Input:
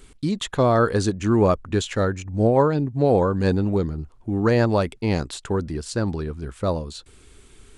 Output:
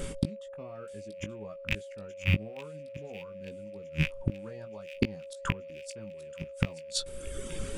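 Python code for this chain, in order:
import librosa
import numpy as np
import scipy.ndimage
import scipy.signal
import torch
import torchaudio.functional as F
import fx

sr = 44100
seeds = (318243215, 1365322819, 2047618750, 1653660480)

p1 = fx.rattle_buzz(x, sr, strikes_db=-35.0, level_db=-21.0)
p2 = fx.dereverb_blind(p1, sr, rt60_s=1.0)
p3 = fx.peak_eq(p2, sr, hz=180.0, db=10.5, octaves=0.61)
p4 = fx.notch(p3, sr, hz=4100.0, q=10.0)
p5 = fx.rider(p4, sr, range_db=3, speed_s=2.0)
p6 = p4 + (p5 * librosa.db_to_amplitude(2.0))
p7 = fx.gate_flip(p6, sr, shuts_db=-15.0, range_db=-39)
p8 = p7 + 10.0 ** (-41.0 / 20.0) * np.sin(2.0 * np.pi * 550.0 * np.arange(len(p7)) / sr)
p9 = fx.doubler(p8, sr, ms=19.0, db=-8.0)
p10 = p9 + fx.echo_wet_highpass(p9, sr, ms=878, feedback_pct=65, hz=2900.0, wet_db=-12.5, dry=0)
y = p10 * librosa.db_to_amplitude(3.0)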